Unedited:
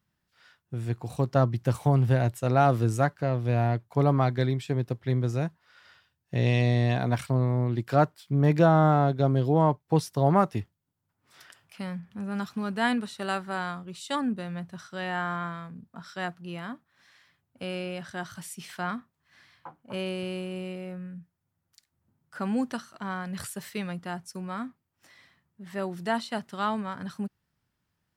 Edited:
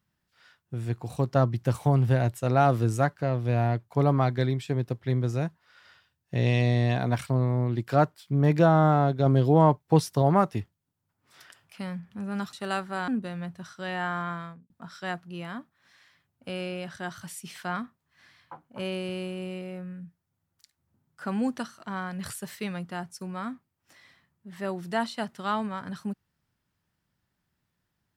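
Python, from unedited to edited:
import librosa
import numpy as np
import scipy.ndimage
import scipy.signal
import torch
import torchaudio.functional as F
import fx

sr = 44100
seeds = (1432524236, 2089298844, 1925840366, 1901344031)

y = fx.studio_fade_out(x, sr, start_s=15.57, length_s=0.27)
y = fx.edit(y, sr, fx.clip_gain(start_s=9.26, length_s=0.96, db=3.0),
    fx.cut(start_s=12.53, length_s=0.58),
    fx.cut(start_s=13.66, length_s=0.56), tone=tone)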